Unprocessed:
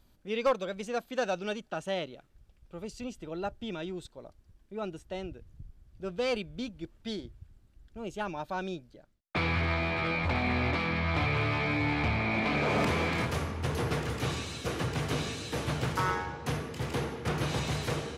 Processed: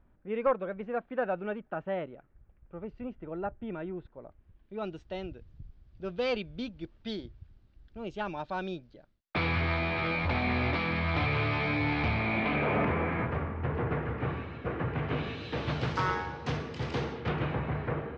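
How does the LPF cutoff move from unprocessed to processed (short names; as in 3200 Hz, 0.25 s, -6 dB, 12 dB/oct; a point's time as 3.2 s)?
LPF 24 dB/oct
4.2 s 2000 Hz
4.86 s 4700 Hz
12.12 s 4700 Hz
12.98 s 2100 Hz
14.82 s 2100 Hz
15.94 s 5300 Hz
17.11 s 5300 Hz
17.6 s 2000 Hz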